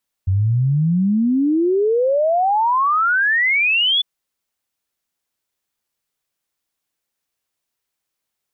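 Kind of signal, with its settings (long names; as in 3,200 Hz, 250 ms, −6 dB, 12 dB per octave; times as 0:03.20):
exponential sine sweep 91 Hz → 3,500 Hz 3.75 s −13.5 dBFS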